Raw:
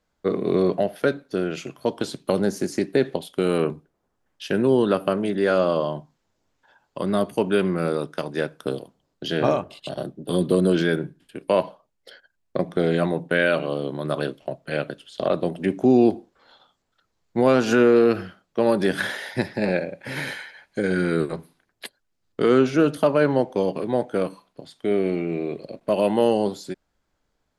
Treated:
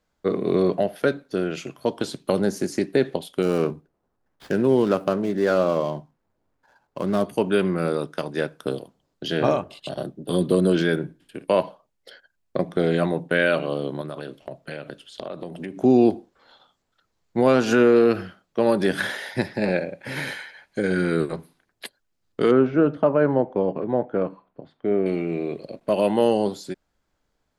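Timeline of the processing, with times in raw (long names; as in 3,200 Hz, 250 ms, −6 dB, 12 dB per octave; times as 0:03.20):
0:03.42–0:07.26: running median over 15 samples
0:11.04–0:11.46: flutter between parallel walls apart 9.4 metres, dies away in 0.24 s
0:14.01–0:15.83: downward compressor, threshold −29 dBFS
0:22.51–0:25.06: low-pass filter 1,500 Hz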